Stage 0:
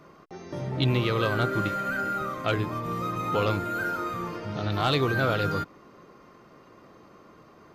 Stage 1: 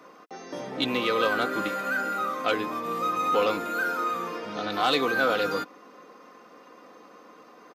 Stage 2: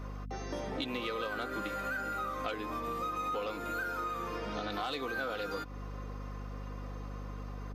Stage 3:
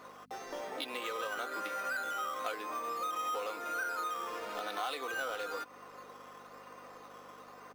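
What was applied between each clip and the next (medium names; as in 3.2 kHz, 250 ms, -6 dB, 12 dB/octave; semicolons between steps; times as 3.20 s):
high-pass 320 Hz 12 dB/octave; comb 4 ms, depth 50%; in parallel at -8 dB: saturation -27 dBFS, distortion -9 dB
hum 50 Hz, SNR 13 dB; compression, threshold -34 dBFS, peak gain reduction 14 dB
high-pass 520 Hz 12 dB/octave; in parallel at -4.5 dB: decimation with a swept rate 8×, swing 60% 1 Hz; on the sum: trim -3 dB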